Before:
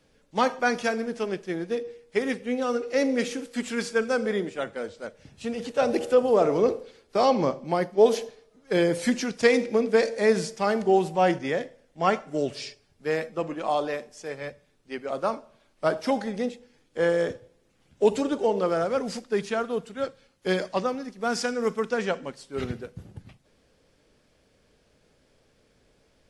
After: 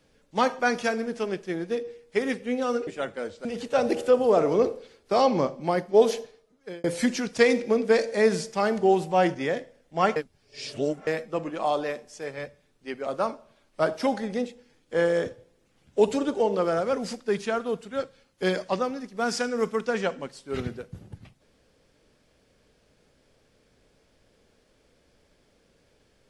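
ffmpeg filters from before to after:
-filter_complex "[0:a]asplit=6[a][b][c][d][e][f];[a]atrim=end=2.872[g];[b]atrim=start=4.458:end=5.042[h];[c]atrim=start=5.488:end=8.88,asetpts=PTS-STARTPTS,afade=t=out:st=2.742:d=0.65[i];[d]atrim=start=8.88:end=12.202,asetpts=PTS-STARTPTS,afade=t=in:d=0.004:c=hsin[j];[e]atrim=start=12.198:end=13.112,asetpts=PTS-STARTPTS,areverse[k];[f]atrim=start=13.108[l];[g][h]acrossfade=d=0.004:c1=hsin:c2=hsin[m];[i][j]concat=n=2:v=0:a=1[n];[m][n]acrossfade=d=0.004:c1=hsin:c2=hsin[o];[o][k]acrossfade=d=0.004:c1=hsin:c2=hsin[p];[p][l]acrossfade=d=0.004:c1=hsin:c2=hsin"

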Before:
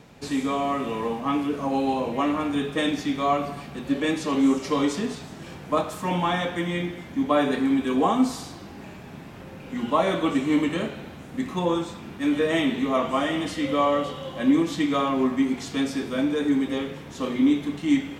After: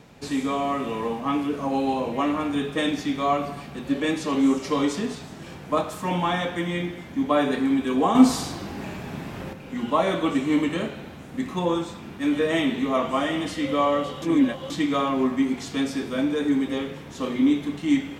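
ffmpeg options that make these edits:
-filter_complex "[0:a]asplit=5[a][b][c][d][e];[a]atrim=end=8.152[f];[b]atrim=start=8.148:end=9.532,asetpts=PTS-STARTPTS,volume=7dB[g];[c]atrim=start=9.528:end=14.222[h];[d]atrim=start=14.218:end=14.702,asetpts=PTS-STARTPTS,areverse[i];[e]atrim=start=14.698[j];[f][g]acrossfade=d=0.004:c1=hsin:c2=hsin[k];[k][h]acrossfade=d=0.004:c1=hsin:c2=hsin[l];[l][i]acrossfade=d=0.004:c1=hsin:c2=hsin[m];[m][j]acrossfade=d=0.004:c1=hsin:c2=hsin"

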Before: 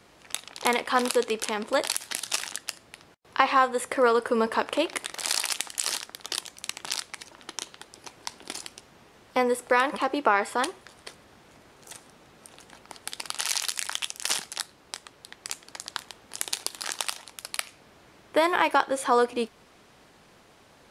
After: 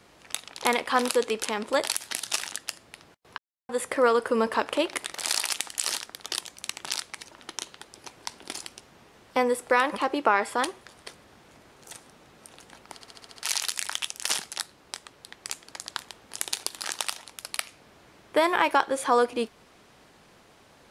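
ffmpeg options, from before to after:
-filter_complex "[0:a]asplit=10[a][b][c][d][e][f][g][h][i][j];[a]atrim=end=3.38,asetpts=PTS-STARTPTS,afade=t=out:st=3.376:d=0.004:c=hsin[k];[b]atrim=start=3.38:end=3.69,asetpts=PTS-STARTPTS,volume=0[l];[c]atrim=start=3.69:end=13.012,asetpts=PTS-STARTPTS,afade=t=in:d=0.004:c=hsin[m];[d]atrim=start=12.938:end=13.012[n];[e]atrim=start=12.938:end=13.012[o];[f]atrim=start=12.938:end=13.012[p];[g]atrim=start=12.938:end=13.012[q];[h]atrim=start=12.938:end=13.012[r];[i]atrim=start=12.938:end=13.012[s];[j]atrim=start=13.428[t];[k][l][m]concat=n=3:v=0:a=1[u];[u][n]acrossfade=d=0.004:c1=hsin:c2=hsin[v];[v][o]acrossfade=d=0.004:c1=hsin:c2=hsin[w];[w][p]acrossfade=d=0.004:c1=hsin:c2=hsin[x];[x][q]acrossfade=d=0.004:c1=hsin:c2=hsin[y];[y][r]acrossfade=d=0.004:c1=hsin:c2=hsin[z];[z][s]acrossfade=d=0.004:c1=hsin:c2=hsin[aa];[aa][t]acrossfade=d=0.004:c1=hsin:c2=hsin"

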